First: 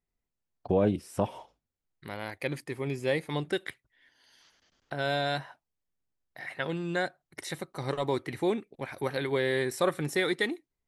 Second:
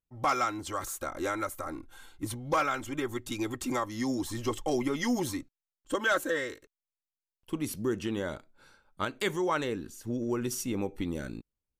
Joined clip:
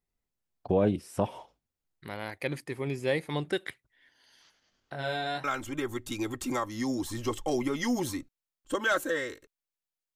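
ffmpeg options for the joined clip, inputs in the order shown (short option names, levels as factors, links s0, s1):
-filter_complex "[0:a]asplit=3[s0][s1][s2];[s0]afade=t=out:st=4.51:d=0.02[s3];[s1]flanger=delay=18.5:depth=5.3:speed=0.47,afade=t=in:st=4.51:d=0.02,afade=t=out:st=5.44:d=0.02[s4];[s2]afade=t=in:st=5.44:d=0.02[s5];[s3][s4][s5]amix=inputs=3:normalize=0,apad=whole_dur=10.15,atrim=end=10.15,atrim=end=5.442[s6];[1:a]atrim=start=2.638:end=7.35[s7];[s6][s7]acrossfade=d=0.004:c1=hsin:c2=hsin"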